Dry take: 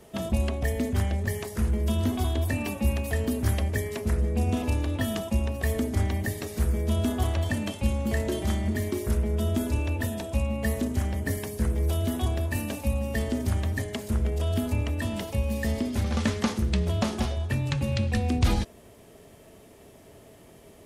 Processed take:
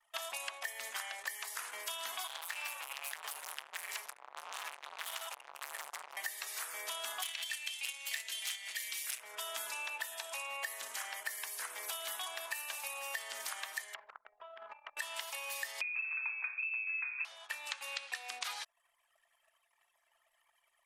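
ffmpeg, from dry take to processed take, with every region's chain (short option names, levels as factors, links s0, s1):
-filter_complex "[0:a]asettb=1/sr,asplit=3[s0][s1][s2];[s0]atrim=end=2.274[s3];[s1]atrim=start=2.27:end=6.17,asetpts=PTS-STARTPTS,afade=t=in:d=0.004:c=qsin,afade=t=out:st=3.896:d=0.004:c=qsin,asubboost=boost=10:cutoff=110,acompressor=threshold=0.141:ratio=3:attack=3.2:release=140:knee=1:detection=peak,volume=31.6,asoftclip=hard,volume=0.0316[s4];[s2]atrim=start=6.166[s5];[s3][s4]acrossfade=d=0.004:c1=hsin:c2=qsin[s6];[s6][s5]acrossfade=d=0.004:c1=qsin:c2=hsin,asettb=1/sr,asplit=3[s7][s8][s9];[s7]atrim=end=7.224[s10];[s8]atrim=start=7.22:end=9.2,asetpts=PTS-STARTPTS,afade=t=in:d=0.004:c=qsin,afade=t=out:st=1.976:d=0.004:c=qsin,agate=range=0.398:threshold=0.0501:ratio=16:release=100:detection=peak,volume=15.8,asoftclip=hard,volume=0.0631,highshelf=f=1700:t=q:w=1.5:g=12.5[s11];[s9]atrim=start=9.196[s12];[s10][s11]acrossfade=d=0.004:c1=hsin:c2=qsin[s13];[s13][s12]acrossfade=d=0.004:c1=qsin:c2=hsin,asettb=1/sr,asplit=3[s14][s15][s16];[s14]atrim=end=13.944[s17];[s15]atrim=start=13.94:end=14.97,asetpts=PTS-STARTPTS,afade=t=in:d=0.004:c=qsin,afade=t=out:st=1.026:d=0.004:c=qsin,lowpass=1500,bandreject=f=60:t=h:w=6,bandreject=f=120:t=h:w=6,bandreject=f=180:t=h:w=6,bandreject=f=240:t=h:w=6,bandreject=f=300:t=h:w=6,acompressor=threshold=0.0224:ratio=4:attack=3.2:release=140:knee=1:detection=peak[s18];[s16]atrim=start=14.966[s19];[s17][s18]acrossfade=d=0.004:c1=hsin:c2=qsin[s20];[s20][s19]acrossfade=d=0.004:c1=qsin:c2=hsin,asettb=1/sr,asplit=3[s21][s22][s23];[s21]atrim=end=15.814[s24];[s22]atrim=start=15.81:end=17.25,asetpts=PTS-STARTPTS,afade=t=in:d=0.004:c=qsin,afade=t=out:st=1.436:d=0.004:c=qsin,equalizer=f=690:t=o:w=1.2:g=-9.5,asplit=2[s25][s26];[s26]adelay=33,volume=0.251[s27];[s25][s27]amix=inputs=2:normalize=0,atrim=end_sample=63504,lowpass=f=2300:t=q:w=0.5098,lowpass=f=2300:t=q:w=0.6013,lowpass=f=2300:t=q:w=0.9,lowpass=f=2300:t=q:w=2.563,afreqshift=-2700[s28];[s23]atrim=start=17.246[s29];[s24][s28]acrossfade=d=0.004:c1=hsin:c2=qsin[s30];[s30][s29]acrossfade=d=0.004:c1=qsin:c2=hsin,highpass=f=990:w=0.5412,highpass=f=990:w=1.3066,anlmdn=0.000631,acompressor=threshold=0.00562:ratio=6,volume=2.24"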